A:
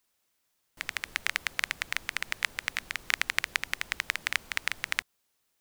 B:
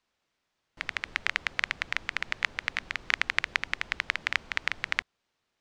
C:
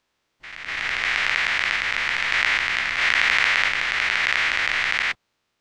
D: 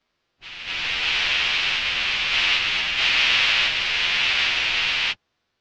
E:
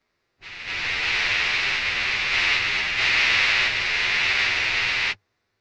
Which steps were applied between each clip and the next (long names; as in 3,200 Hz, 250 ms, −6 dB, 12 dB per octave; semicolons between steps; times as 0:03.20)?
high-frequency loss of the air 140 metres; level +3 dB
every bin's largest magnitude spread in time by 240 ms; backwards echo 246 ms −9 dB
partials spread apart or drawn together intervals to 114%; low-pass filter 5,300 Hz 24 dB per octave; level +5 dB
thirty-one-band graphic EQ 100 Hz +9 dB, 400 Hz +5 dB, 2,000 Hz +5 dB, 3,150 Hz −8 dB